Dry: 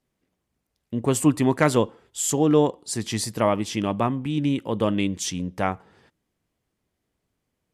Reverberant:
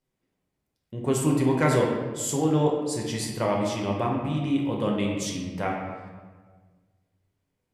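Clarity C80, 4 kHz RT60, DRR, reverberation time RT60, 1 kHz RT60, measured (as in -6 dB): 4.0 dB, 0.90 s, -1.5 dB, 1.4 s, 1.4 s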